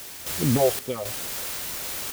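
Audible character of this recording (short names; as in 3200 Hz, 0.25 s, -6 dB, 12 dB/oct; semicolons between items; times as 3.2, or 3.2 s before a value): phasing stages 4, 2.6 Hz, lowest notch 220–1600 Hz; a quantiser's noise floor 6-bit, dither triangular; random-step tremolo 3.8 Hz, depth 70%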